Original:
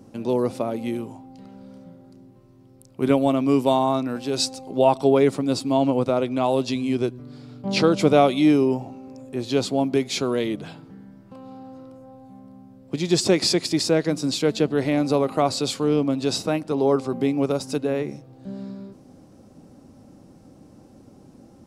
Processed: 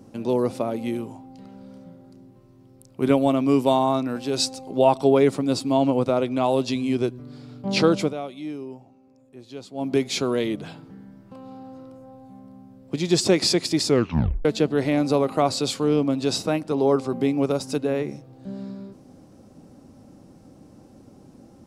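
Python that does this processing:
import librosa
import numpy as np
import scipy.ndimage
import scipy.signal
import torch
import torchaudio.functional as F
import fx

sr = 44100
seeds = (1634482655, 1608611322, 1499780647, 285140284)

y = fx.edit(x, sr, fx.fade_down_up(start_s=7.95, length_s=1.98, db=-16.0, fade_s=0.19),
    fx.tape_stop(start_s=13.85, length_s=0.6), tone=tone)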